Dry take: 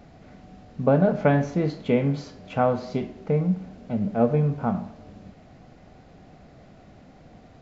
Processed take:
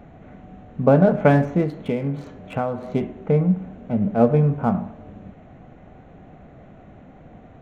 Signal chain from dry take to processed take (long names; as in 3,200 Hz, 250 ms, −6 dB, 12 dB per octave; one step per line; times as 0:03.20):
adaptive Wiener filter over 9 samples
0:01.62–0:02.93: downward compressor 4 to 1, threshold −26 dBFS, peak gain reduction 9 dB
level +4.5 dB